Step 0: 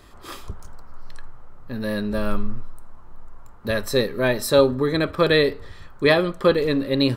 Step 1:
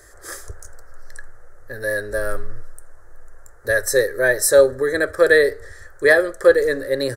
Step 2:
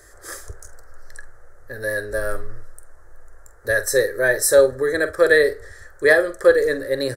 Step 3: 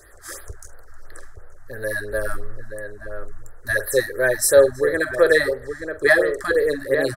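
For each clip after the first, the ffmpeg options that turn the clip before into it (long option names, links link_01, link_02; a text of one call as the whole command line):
ffmpeg -i in.wav -af "firequalizer=gain_entry='entry(100,0);entry(190,-21);entry(320,-2);entry(500,8);entry(980,-8);entry(1700,13);entry(2600,-14);entry(6000,12);entry(9500,15);entry(14000,7)':delay=0.05:min_phase=1,volume=-1.5dB" out.wav
ffmpeg -i in.wav -filter_complex "[0:a]asplit=2[link_01][link_02];[link_02]adelay=46,volume=-13dB[link_03];[link_01][link_03]amix=inputs=2:normalize=0,volume=-1dB" out.wav
ffmpeg -i in.wav -filter_complex "[0:a]asplit=2[link_01][link_02];[link_02]adelay=874.6,volume=-7dB,highshelf=frequency=4000:gain=-19.7[link_03];[link_01][link_03]amix=inputs=2:normalize=0,afftfilt=real='re*(1-between(b*sr/1024,400*pow(7200/400,0.5+0.5*sin(2*PI*2.9*pts/sr))/1.41,400*pow(7200/400,0.5+0.5*sin(2*PI*2.9*pts/sr))*1.41))':imag='im*(1-between(b*sr/1024,400*pow(7200/400,0.5+0.5*sin(2*PI*2.9*pts/sr))/1.41,400*pow(7200/400,0.5+0.5*sin(2*PI*2.9*pts/sr))*1.41))':win_size=1024:overlap=0.75" out.wav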